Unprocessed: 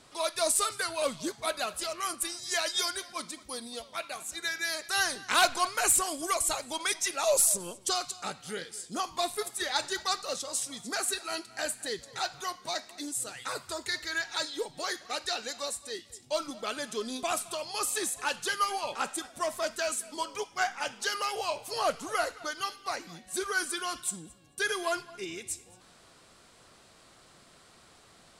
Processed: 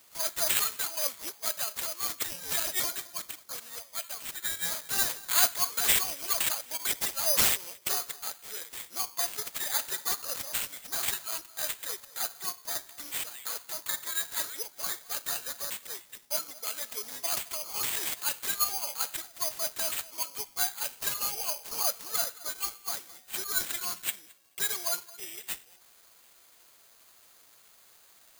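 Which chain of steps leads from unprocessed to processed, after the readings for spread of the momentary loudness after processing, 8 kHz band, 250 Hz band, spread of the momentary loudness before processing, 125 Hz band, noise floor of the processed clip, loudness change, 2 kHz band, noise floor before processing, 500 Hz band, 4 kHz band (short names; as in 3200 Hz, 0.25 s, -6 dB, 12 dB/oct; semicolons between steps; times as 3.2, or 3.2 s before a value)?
11 LU, +0.5 dB, -10.0 dB, 11 LU, 0.0 dB, -59 dBFS, +1.5 dB, -4.5 dB, -58 dBFS, -9.5 dB, -0.5 dB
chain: HPF 500 Hz 12 dB/oct; careless resampling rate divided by 8×, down none, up zero stuff; gain -8.5 dB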